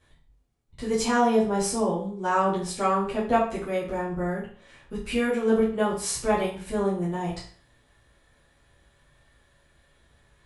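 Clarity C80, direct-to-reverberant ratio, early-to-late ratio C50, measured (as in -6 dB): 10.5 dB, -9.5 dB, 5.5 dB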